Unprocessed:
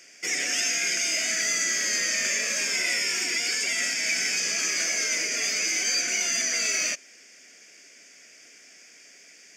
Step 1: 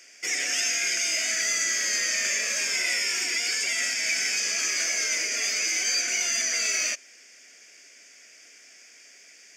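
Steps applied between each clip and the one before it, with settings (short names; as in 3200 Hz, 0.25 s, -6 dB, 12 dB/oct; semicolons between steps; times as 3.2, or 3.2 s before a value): low shelf 290 Hz -10 dB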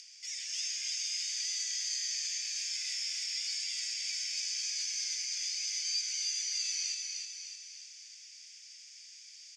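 upward compressor, threshold -33 dBFS; ladder band-pass 4800 Hz, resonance 45%; feedback echo 0.305 s, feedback 52%, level -4 dB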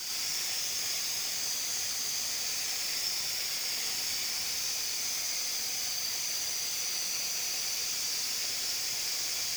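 infinite clipping; whisperiser; non-linear reverb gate 0.14 s rising, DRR -2.5 dB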